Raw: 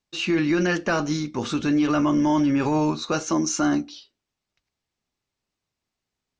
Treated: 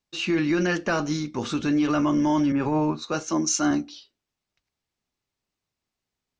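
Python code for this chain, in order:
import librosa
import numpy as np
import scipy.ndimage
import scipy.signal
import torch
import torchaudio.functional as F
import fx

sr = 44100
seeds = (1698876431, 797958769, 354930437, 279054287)

y = fx.band_widen(x, sr, depth_pct=100, at=(2.52, 3.71))
y = F.gain(torch.from_numpy(y), -1.5).numpy()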